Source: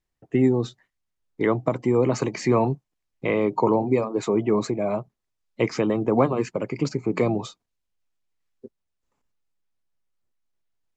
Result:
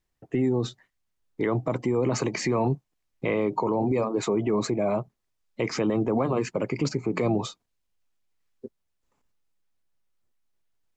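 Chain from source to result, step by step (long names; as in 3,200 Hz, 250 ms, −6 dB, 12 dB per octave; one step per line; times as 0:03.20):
brickwall limiter −18.5 dBFS, peak gain reduction 11 dB
level +2.5 dB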